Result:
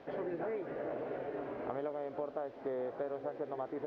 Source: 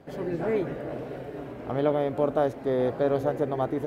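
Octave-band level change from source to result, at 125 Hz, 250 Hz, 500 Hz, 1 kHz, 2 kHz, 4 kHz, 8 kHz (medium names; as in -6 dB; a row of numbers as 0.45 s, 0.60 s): -19.5 dB, -13.0 dB, -11.5 dB, -10.5 dB, -9.5 dB, under -15 dB, no reading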